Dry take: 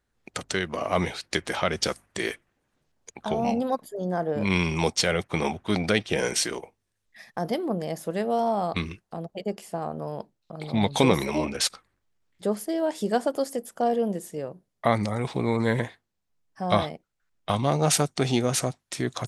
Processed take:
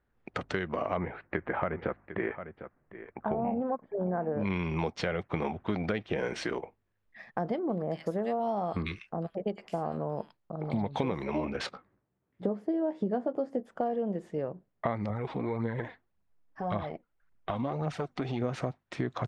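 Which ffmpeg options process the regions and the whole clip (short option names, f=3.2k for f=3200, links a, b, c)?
-filter_complex "[0:a]asettb=1/sr,asplit=3[a][b][c];[a]atrim=end=0.974[d];[b]atrim=start=0.97:end=4.4,asetpts=PTS-STARTPTS,afade=t=in:d=0.004:c=qsin,afade=t=out:st=3.426:d=0.004:c=qsin,lowpass=f=2.1k:w=0.5412,lowpass=f=2.1k:w=1.3066,aecho=1:1:751:0.141,atrim=end_sample=151263[e];[c]atrim=start=4.396[f];[d][e]acrossfade=d=0.004:c1=hsin:c2=qsin[g];[g][f]acrossfade=d=0.004:c1=qsin:c2=hsin,asettb=1/sr,asplit=3[h][i][j];[h]atrim=end=7.594[k];[i]atrim=start=7.59:end=10.86,asetpts=PTS-STARTPTS,afade=t=in:d=0.004:c=qsin,afade=t=out:st=3.266:d=0.004:c=qsin,aemphasis=mode=production:type=50fm,acrossover=split=1600[l][m];[m]adelay=100[n];[l][n]amix=inputs=2:normalize=0,atrim=end_sample=144207[o];[j]atrim=start=10.856[p];[k][o]acrossfade=d=0.004:c1=hsin:c2=qsin[q];[q][p]acrossfade=d=0.004:c1=qsin:c2=hsin,asettb=1/sr,asplit=3[r][s][t];[r]atrim=end=11.664[u];[s]atrim=start=11.66:end=13.63,asetpts=PTS-STARTPTS,afade=t=in:d=0.004:c=qsin,afade=t=out:st=1.966:d=0.004:c=qsin,highpass=110,tiltshelf=f=840:g=6.5,asplit=2[v][w];[w]adelay=16,volume=-8dB[x];[v][x]amix=inputs=2:normalize=0,atrim=end_sample=86877[y];[t]atrim=start=13.626[z];[u][y]acrossfade=d=0.004:c1=hsin:c2=qsin[aa];[aa][z]acrossfade=d=0.004:c1=qsin:c2=hsin,asettb=1/sr,asplit=3[ab][ac][ad];[ab]atrim=end=15.104[ae];[ac]atrim=start=15.1:end=18.42,asetpts=PTS-STARTPTS,afade=t=in:d=0.004:c=qsin,afade=t=out:st=3.316:d=0.004:c=qsin,acompressor=threshold=-34dB:ratio=2:attack=3.2:release=140:knee=1:detection=peak,aphaser=in_gain=1:out_gain=1:delay=4.4:decay=0.46:speed=1.8:type=triangular[af];[ad]atrim=start=18.416[ag];[ae][af]acrossfade=d=0.004:c1=hsin:c2=qsin[ah];[ah][ag]acrossfade=d=0.004:c1=qsin:c2=hsin,lowpass=2k,acompressor=threshold=-29dB:ratio=6,volume=1.5dB"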